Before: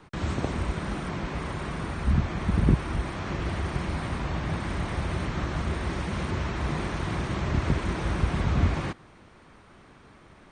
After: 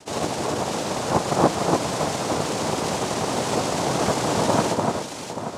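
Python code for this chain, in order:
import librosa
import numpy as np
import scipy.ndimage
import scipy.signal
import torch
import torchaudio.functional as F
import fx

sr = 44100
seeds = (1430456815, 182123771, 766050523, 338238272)

y = fx.stretch_vocoder_free(x, sr, factor=0.53)
y = fx.noise_vocoder(y, sr, seeds[0], bands=2)
y = fx.echo_alternate(y, sr, ms=293, hz=2000.0, feedback_pct=65, wet_db=-2.5)
y = y * 10.0 ** (8.5 / 20.0)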